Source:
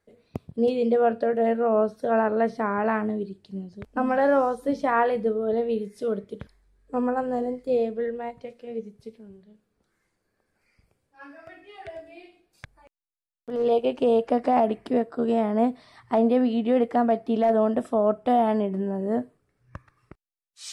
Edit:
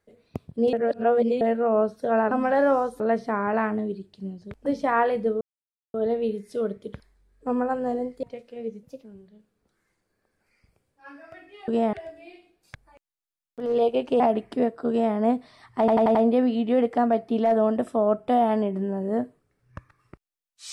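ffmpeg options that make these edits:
-filter_complex "[0:a]asplit=17[s0][s1][s2][s3][s4][s5][s6][s7][s8][s9][s10][s11][s12][s13][s14][s15][s16];[s0]atrim=end=0.732[s17];[s1]atrim=start=0.728:end=1.412,asetpts=PTS-STARTPTS,areverse[s18];[s2]atrim=start=1.408:end=2.312[s19];[s3]atrim=start=3.968:end=4.662[s20];[s4]atrim=start=2.308:end=3.972[s21];[s5]atrim=start=4.658:end=5.41,asetpts=PTS-STARTPTS,afade=t=out:st=0.748:d=0.004:c=hsin,apad=pad_dur=0.53[s22];[s6]atrim=start=5.41:end=7.702,asetpts=PTS-STARTPTS,afade=t=in:d=0.004:c=hsin[s23];[s7]atrim=start=8.338:end=8.944[s24];[s8]atrim=start=8.94:end=9.19,asetpts=PTS-STARTPTS,asetrate=52479,aresample=44100[s25];[s9]atrim=start=9.186:end=11.832[s26];[s10]atrim=start=15.228:end=15.482[s27];[s11]atrim=start=11.828:end=14.102[s28];[s12]atrim=start=14.538:end=16.222[s29];[s13]atrim=start=16.128:end=16.222[s30];[s14]atrim=start=16.128:end=16.222[s31];[s15]atrim=start=16.128:end=16.222[s32];[s16]atrim=start=16.128[s33];[s17][s18]acrossfade=d=0.004:c1=hsin:c2=hsin[s34];[s34][s19]acrossfade=d=0.004:c1=hsin:c2=hsin[s35];[s35][s20]acrossfade=d=0.004:c1=hsin:c2=hsin[s36];[s36][s21]acrossfade=d=0.004:c1=hsin:c2=hsin[s37];[s22][s23]concat=n=2:v=0:a=1[s38];[s37][s38]acrossfade=d=0.004:c1=hsin:c2=hsin[s39];[s39][s24]acrossfade=d=0.004:c1=hsin:c2=hsin[s40];[s40][s25]acrossfade=d=0.004:c1=hsin:c2=hsin[s41];[s41][s26]acrossfade=d=0.004:c1=hsin:c2=hsin[s42];[s42][s27]acrossfade=d=0.004:c1=hsin:c2=hsin[s43];[s43][s28]acrossfade=d=0.004:c1=hsin:c2=hsin[s44];[s44][s29]acrossfade=d=0.004:c1=hsin:c2=hsin[s45];[s45][s30]acrossfade=d=0.004:c1=hsin:c2=hsin[s46];[s46][s31]acrossfade=d=0.004:c1=hsin:c2=hsin[s47];[s47][s32]acrossfade=d=0.004:c1=hsin:c2=hsin[s48];[s48][s33]acrossfade=d=0.004:c1=hsin:c2=hsin"

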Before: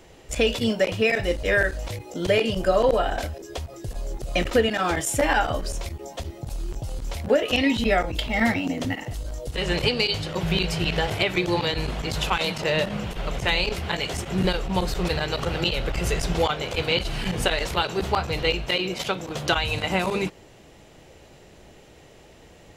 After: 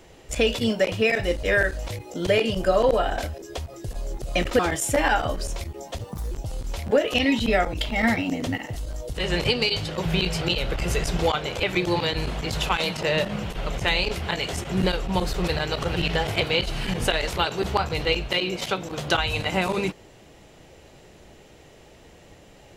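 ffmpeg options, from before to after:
-filter_complex "[0:a]asplit=8[s0][s1][s2][s3][s4][s5][s6][s7];[s0]atrim=end=4.592[s8];[s1]atrim=start=4.838:end=6.264[s9];[s2]atrim=start=6.26:end=6.69,asetpts=PTS-STARTPTS,asetrate=62622,aresample=44100,atrim=end_sample=13354,asetpts=PTS-STARTPTS[s10];[s3]atrim=start=6.686:end=10.792[s11];[s4]atrim=start=15.568:end=16.792[s12];[s5]atrim=start=11.238:end=15.572[s13];[s6]atrim=start=10.788:end=11.242[s14];[s7]atrim=start=16.788[s15];[s8][s9]acrossfade=d=0.004:c1=hsin:c2=hsin[s16];[s16][s10]acrossfade=d=0.004:c1=hsin:c2=hsin[s17];[s17][s11]acrossfade=d=0.004:c1=hsin:c2=hsin[s18];[s18][s12]acrossfade=d=0.004:c1=hsin:c2=hsin[s19];[s19][s13]acrossfade=d=0.004:c1=hsin:c2=hsin[s20];[s20][s14]acrossfade=d=0.004:c1=hsin:c2=hsin[s21];[s21][s15]acrossfade=d=0.004:c1=hsin:c2=hsin"

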